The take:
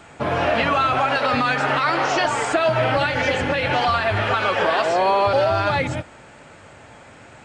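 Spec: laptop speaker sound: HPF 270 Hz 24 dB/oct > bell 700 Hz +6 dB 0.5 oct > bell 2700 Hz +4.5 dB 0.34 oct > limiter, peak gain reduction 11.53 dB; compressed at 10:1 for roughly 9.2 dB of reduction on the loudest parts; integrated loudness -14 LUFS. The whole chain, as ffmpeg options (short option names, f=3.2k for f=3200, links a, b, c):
-af "acompressor=threshold=-24dB:ratio=10,highpass=f=270:w=0.5412,highpass=f=270:w=1.3066,equalizer=f=700:t=o:w=0.5:g=6,equalizer=f=2.7k:t=o:w=0.34:g=4.5,volume=19.5dB,alimiter=limit=-6dB:level=0:latency=1"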